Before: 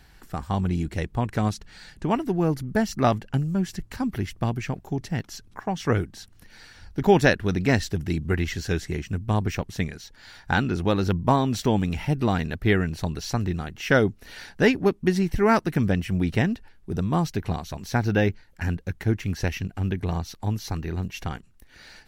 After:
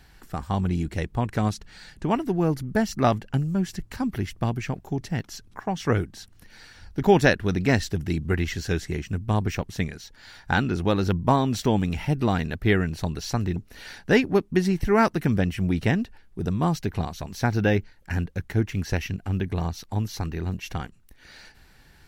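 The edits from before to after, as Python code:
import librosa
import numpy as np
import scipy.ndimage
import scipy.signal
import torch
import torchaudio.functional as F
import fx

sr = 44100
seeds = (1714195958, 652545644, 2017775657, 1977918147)

y = fx.edit(x, sr, fx.cut(start_s=13.56, length_s=0.51), tone=tone)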